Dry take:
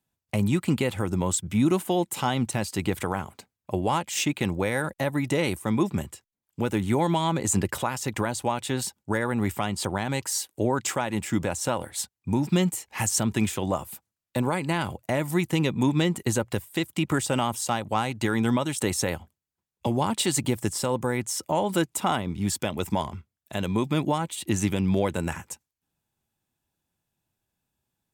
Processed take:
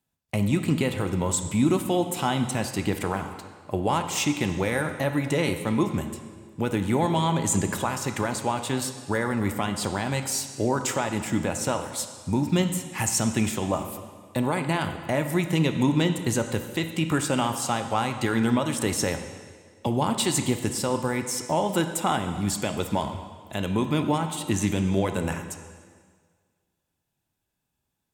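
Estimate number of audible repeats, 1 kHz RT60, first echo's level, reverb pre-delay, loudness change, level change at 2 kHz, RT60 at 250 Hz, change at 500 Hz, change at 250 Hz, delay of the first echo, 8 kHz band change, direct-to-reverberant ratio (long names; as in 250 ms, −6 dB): no echo audible, 1.7 s, no echo audible, 4 ms, +0.5 dB, +1.0 dB, 1.7 s, +0.5 dB, +1.0 dB, no echo audible, +0.5 dB, 6.5 dB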